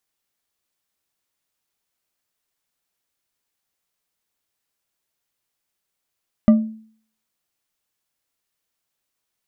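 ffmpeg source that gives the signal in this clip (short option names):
-f lavfi -i "aevalsrc='0.531*pow(10,-3*t/0.52)*sin(2*PI*220*t)+0.158*pow(10,-3*t/0.256)*sin(2*PI*606.5*t)+0.0473*pow(10,-3*t/0.16)*sin(2*PI*1188.9*t)+0.0141*pow(10,-3*t/0.112)*sin(2*PI*1965.3*t)+0.00422*pow(10,-3*t/0.085)*sin(2*PI*2934.8*t)':d=0.89:s=44100"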